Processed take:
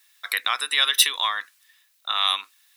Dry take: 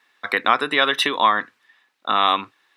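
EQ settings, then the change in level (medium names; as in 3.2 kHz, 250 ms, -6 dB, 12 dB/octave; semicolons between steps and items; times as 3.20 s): high-pass 450 Hz 6 dB/octave; differentiator; treble shelf 6.4 kHz +10.5 dB; +6.5 dB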